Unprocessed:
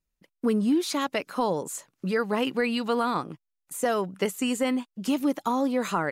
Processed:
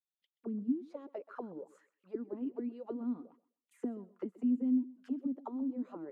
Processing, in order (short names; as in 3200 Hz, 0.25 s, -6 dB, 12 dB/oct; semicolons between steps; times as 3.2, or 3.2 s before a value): 3–4.93 comb 4.2 ms, depth 43%; auto-wah 250–3600 Hz, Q 7.9, down, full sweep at -21 dBFS; thinning echo 0.128 s, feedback 19%, high-pass 160 Hz, level -19 dB; gain -4 dB